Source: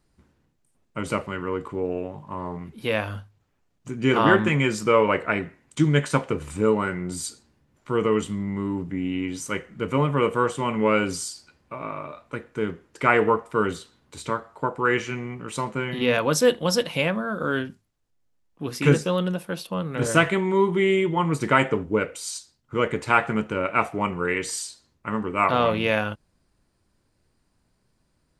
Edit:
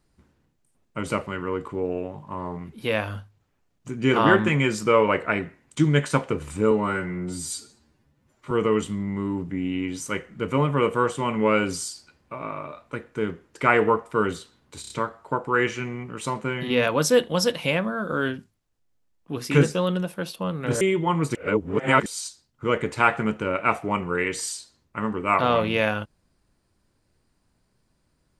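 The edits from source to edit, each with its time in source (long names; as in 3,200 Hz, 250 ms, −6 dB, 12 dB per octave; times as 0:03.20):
0:06.71–0:07.91: time-stretch 1.5×
0:14.21: stutter 0.03 s, 4 plays
0:20.12–0:20.91: remove
0:21.45–0:22.16: reverse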